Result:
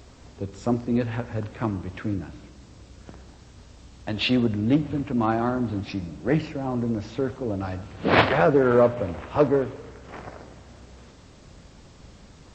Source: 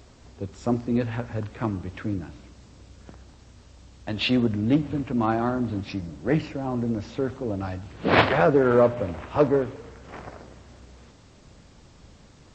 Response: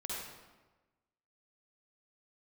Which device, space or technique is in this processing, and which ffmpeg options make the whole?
ducked reverb: -filter_complex "[0:a]asplit=3[link_01][link_02][link_03];[1:a]atrim=start_sample=2205[link_04];[link_02][link_04]afir=irnorm=-1:irlink=0[link_05];[link_03]apad=whole_len=553189[link_06];[link_05][link_06]sidechaincompress=threshold=-32dB:ratio=8:attack=16:release=1390,volume=-6dB[link_07];[link_01][link_07]amix=inputs=2:normalize=0"

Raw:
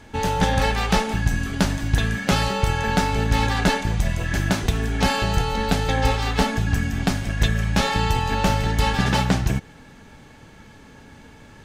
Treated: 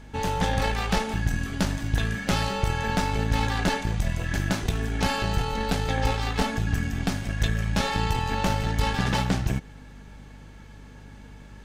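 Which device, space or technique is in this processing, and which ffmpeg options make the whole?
valve amplifier with mains hum: -af "aeval=exprs='(tanh(3.55*val(0)+0.45)-tanh(0.45))/3.55':channel_layout=same,aeval=exprs='val(0)+0.00794*(sin(2*PI*50*n/s)+sin(2*PI*2*50*n/s)/2+sin(2*PI*3*50*n/s)/3+sin(2*PI*4*50*n/s)/4+sin(2*PI*5*50*n/s)/5)':channel_layout=same,volume=-2.5dB"

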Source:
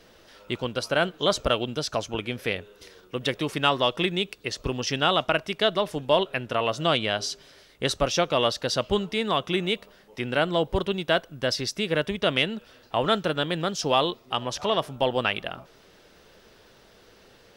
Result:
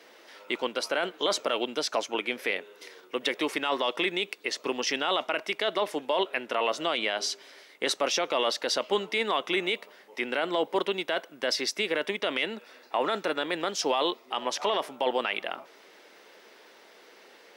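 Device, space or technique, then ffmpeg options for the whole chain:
laptop speaker: -filter_complex "[0:a]asettb=1/sr,asplit=3[link_01][link_02][link_03];[link_01]atrim=end=12.464[link_04];[link_02]atrim=start=12.46:end=13.57,asetpts=PTS-STARTPTS,afade=type=in:duration=0.004:curve=qsin,afade=type=out:start_time=1.106:duration=0.004:curve=qsin,bandreject=frequency=3100:width=8.7[link_05];[link_03]atrim=start=13.566[link_06];[link_04][link_05]acrossfade=duration=0.004:curve1=hsin:curve2=qsin[link_07];[link_07][link_06]acrossfade=duration=0.004:curve1=qsin:curve2=hsin,highpass=frequency=270:width=0.5412,highpass=frequency=270:width=1.3066,equalizer=frequency=910:width_type=o:width=0.54:gain=4,equalizer=frequency=2100:width_type=o:width=0.45:gain=7,alimiter=limit=-15.5dB:level=0:latency=1:release=20"

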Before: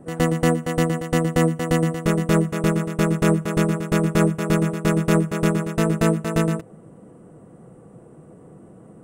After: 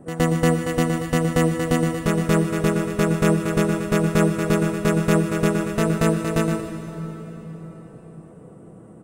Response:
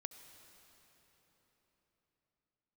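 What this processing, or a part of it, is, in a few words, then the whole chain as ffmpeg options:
cave: -filter_complex "[0:a]aecho=1:1:152:0.2[link_01];[1:a]atrim=start_sample=2205[link_02];[link_01][link_02]afir=irnorm=-1:irlink=0,volume=4.5dB"

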